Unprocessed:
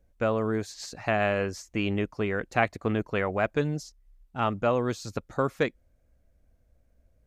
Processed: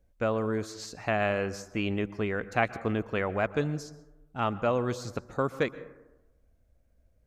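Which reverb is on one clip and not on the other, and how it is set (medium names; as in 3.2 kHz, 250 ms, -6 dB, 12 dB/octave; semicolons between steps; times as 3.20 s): plate-style reverb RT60 1 s, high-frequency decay 0.3×, pre-delay 110 ms, DRR 16 dB; trim -2 dB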